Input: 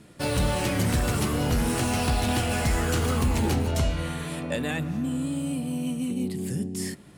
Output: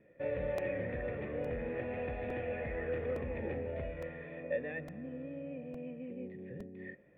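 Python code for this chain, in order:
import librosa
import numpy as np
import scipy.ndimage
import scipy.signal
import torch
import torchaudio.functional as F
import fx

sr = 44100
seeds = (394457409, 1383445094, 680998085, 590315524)

y = fx.formant_cascade(x, sr, vowel='e')
y = fx.buffer_crackle(y, sr, first_s=0.58, period_s=0.86, block=128, kind='repeat')
y = F.gain(torch.from_numpy(y), 1.5).numpy()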